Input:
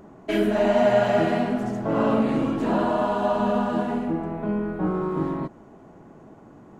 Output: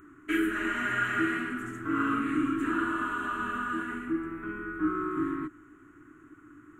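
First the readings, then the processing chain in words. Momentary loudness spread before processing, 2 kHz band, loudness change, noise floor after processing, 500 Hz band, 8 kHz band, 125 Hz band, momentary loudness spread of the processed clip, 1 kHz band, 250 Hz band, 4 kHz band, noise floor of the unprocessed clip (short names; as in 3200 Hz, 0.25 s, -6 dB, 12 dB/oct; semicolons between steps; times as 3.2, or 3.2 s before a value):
8 LU, +3.5 dB, -7.0 dB, -55 dBFS, -16.5 dB, n/a, -13.5 dB, 7 LU, -6.0 dB, -6.5 dB, -6.0 dB, -48 dBFS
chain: EQ curve 110 Hz 0 dB, 210 Hz -15 dB, 300 Hz +10 dB, 570 Hz -26 dB, 850 Hz -18 dB, 1300 Hz +14 dB, 3000 Hz +2 dB, 4900 Hz -14 dB, 7400 Hz +8 dB; gain -7 dB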